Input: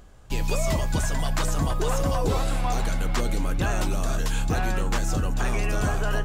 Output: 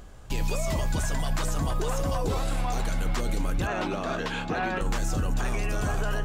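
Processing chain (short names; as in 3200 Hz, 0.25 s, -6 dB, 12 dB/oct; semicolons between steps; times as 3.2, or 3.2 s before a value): 3.67–4.81 three-band isolator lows -19 dB, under 170 Hz, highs -22 dB, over 4200 Hz; limiter -23 dBFS, peak gain reduction 8.5 dB; gain +3.5 dB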